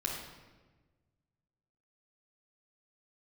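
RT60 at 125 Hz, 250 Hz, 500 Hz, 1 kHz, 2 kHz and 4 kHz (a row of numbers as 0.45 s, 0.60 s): 2.1 s, 1.7 s, 1.4 s, 1.2 s, 1.1 s, 0.90 s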